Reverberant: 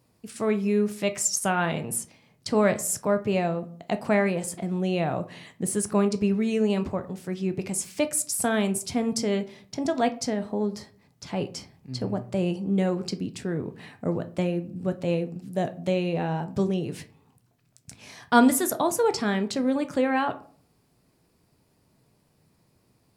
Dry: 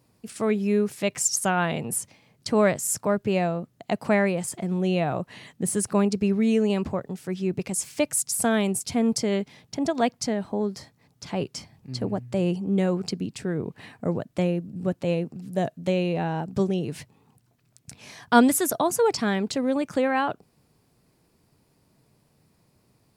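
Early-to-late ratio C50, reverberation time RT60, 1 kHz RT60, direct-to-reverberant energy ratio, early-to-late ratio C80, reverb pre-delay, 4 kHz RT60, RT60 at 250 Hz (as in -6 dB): 16.5 dB, 0.50 s, 0.45 s, 9.0 dB, 21.5 dB, 11 ms, 0.25 s, 0.60 s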